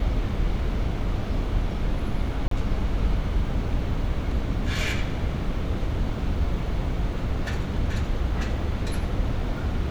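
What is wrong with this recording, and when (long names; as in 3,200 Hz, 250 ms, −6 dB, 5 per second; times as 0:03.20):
0:02.48–0:02.51: drop-out 33 ms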